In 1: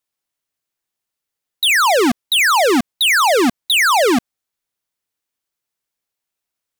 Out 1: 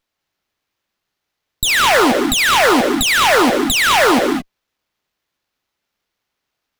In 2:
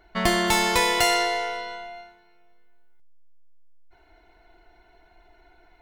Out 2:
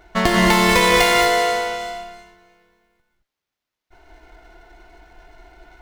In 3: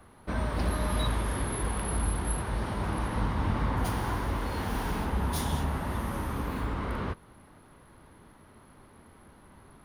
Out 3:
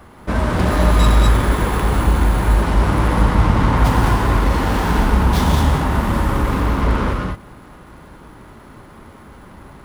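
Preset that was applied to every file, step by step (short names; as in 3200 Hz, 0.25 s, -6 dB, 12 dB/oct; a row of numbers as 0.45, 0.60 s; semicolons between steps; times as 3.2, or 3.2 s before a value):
compressor, threshold -20 dBFS; non-linear reverb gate 0.24 s rising, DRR 2 dB; running maximum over 5 samples; normalise peaks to -1.5 dBFS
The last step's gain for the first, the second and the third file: +5.5, +7.5, +12.0 dB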